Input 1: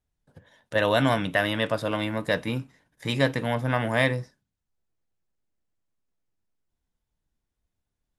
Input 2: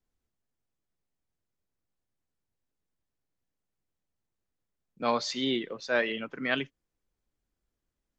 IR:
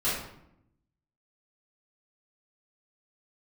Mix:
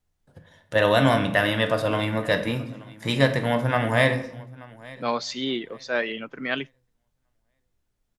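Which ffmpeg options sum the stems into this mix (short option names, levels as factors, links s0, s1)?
-filter_complex "[0:a]volume=1.19,asplit=3[s0][s1][s2];[s1]volume=0.158[s3];[s2]volume=0.0944[s4];[1:a]volume=1.19[s5];[2:a]atrim=start_sample=2205[s6];[s3][s6]afir=irnorm=-1:irlink=0[s7];[s4]aecho=0:1:880|1760|2640|3520:1|0.25|0.0625|0.0156[s8];[s0][s5][s7][s8]amix=inputs=4:normalize=0"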